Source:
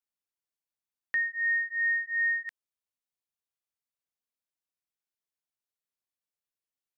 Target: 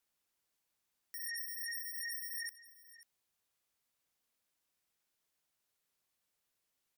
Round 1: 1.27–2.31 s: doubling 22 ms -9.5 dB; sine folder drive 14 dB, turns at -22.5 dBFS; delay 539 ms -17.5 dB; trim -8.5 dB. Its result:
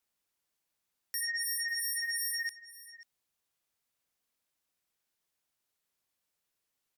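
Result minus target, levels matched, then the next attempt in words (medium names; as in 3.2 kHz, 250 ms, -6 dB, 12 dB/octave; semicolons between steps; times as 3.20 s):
sine folder: distortion -6 dB
1.27–2.31 s: doubling 22 ms -9.5 dB; sine folder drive 14 dB, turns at -29.5 dBFS; delay 539 ms -17.5 dB; trim -8.5 dB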